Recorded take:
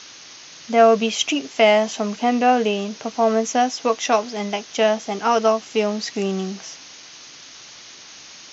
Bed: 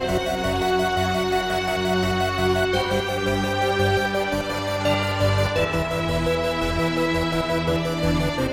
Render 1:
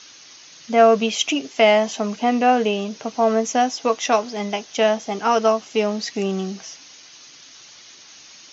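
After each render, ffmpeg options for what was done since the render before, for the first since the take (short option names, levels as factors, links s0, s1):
-af "afftdn=nr=6:nf=-42"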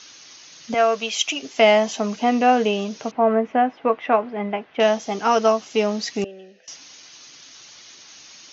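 -filter_complex "[0:a]asettb=1/sr,asplit=3[s0][s1][s2];[s0]atrim=end=0.744[s3];[s1]atrim=start=0.74:end=1.43,asetpts=PTS-STARTPTS,afade=t=in:d=0.004:c=qsin,afade=t=out:st=0.686:d=0.004:c=qsin,highpass=f=960:p=1[s4];[s2]atrim=start=1.426[s5];[s3][s4]acrossfade=d=0.004:c1=hsin:c2=qsin[s6];[s6][s5]acrossfade=d=0.004:c1=qsin:c2=hsin,asettb=1/sr,asplit=3[s7][s8][s9];[s7]atrim=end=3.114[s10];[s8]atrim=start=3.11:end=4.8,asetpts=PTS-STARTPTS,afade=t=in:d=0.004:c=qsin,afade=t=out:st=1.686:d=0.004:c=qsin,lowpass=f=2300:w=0.5412,lowpass=f=2300:w=1.3066[s11];[s9]atrim=start=4.796[s12];[s10][s11]acrossfade=d=0.004:c1=hsin:c2=qsin[s13];[s13][s12]acrossfade=d=0.004:c1=qsin:c2=hsin,asettb=1/sr,asplit=3[s14][s15][s16];[s14]atrim=end=6.244[s17];[s15]atrim=start=6.24:end=6.68,asetpts=PTS-STARTPTS,afade=t=in:d=0.004:c=qsin,afade=t=out:st=0.436:d=0.004:c=qsin,asplit=3[s18][s19][s20];[s18]bandpass=f=530:t=q:w=8,volume=1[s21];[s19]bandpass=f=1840:t=q:w=8,volume=0.501[s22];[s20]bandpass=f=2480:t=q:w=8,volume=0.355[s23];[s21][s22][s23]amix=inputs=3:normalize=0[s24];[s16]atrim=start=6.676[s25];[s17][s24]acrossfade=d=0.004:c1=hsin:c2=qsin[s26];[s26][s25]acrossfade=d=0.004:c1=qsin:c2=hsin"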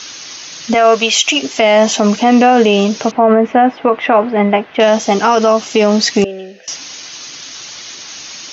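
-af "alimiter=level_in=5.31:limit=0.891:release=50:level=0:latency=1"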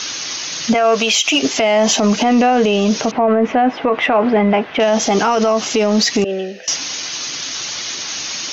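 -af "alimiter=limit=0.299:level=0:latency=1:release=83,acontrast=37"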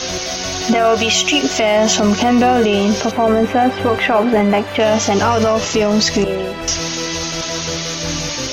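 -filter_complex "[1:a]volume=0.708[s0];[0:a][s0]amix=inputs=2:normalize=0"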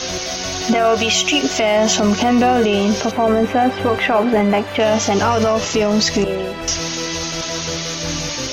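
-af "volume=0.841"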